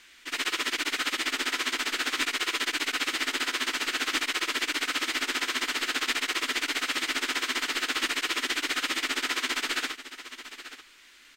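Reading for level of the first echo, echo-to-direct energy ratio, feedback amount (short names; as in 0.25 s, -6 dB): -13.5 dB, -13.5 dB, no steady repeat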